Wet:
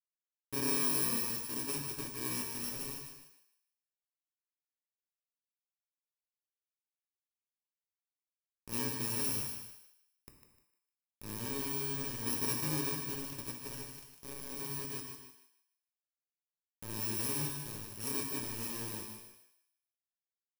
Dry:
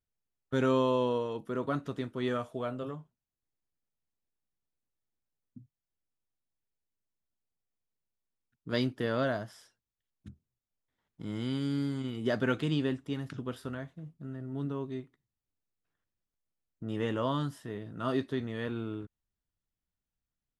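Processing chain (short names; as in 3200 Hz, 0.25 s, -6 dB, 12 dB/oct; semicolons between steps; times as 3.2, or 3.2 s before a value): FFT order left unsorted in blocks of 64 samples; notches 60/120/180 Hz; requantised 6-bit, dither none; thinning echo 0.152 s, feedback 30%, high-pass 770 Hz, level -6.5 dB; non-linear reverb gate 0.37 s falling, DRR 1.5 dB; gain -7.5 dB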